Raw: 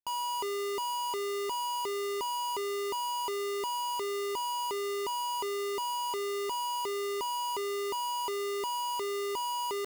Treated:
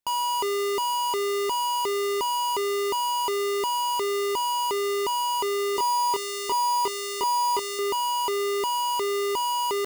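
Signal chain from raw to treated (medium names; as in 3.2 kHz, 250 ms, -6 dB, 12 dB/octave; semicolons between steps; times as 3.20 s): 5.74–7.79 s: doubling 26 ms -3.5 dB; trim +7.5 dB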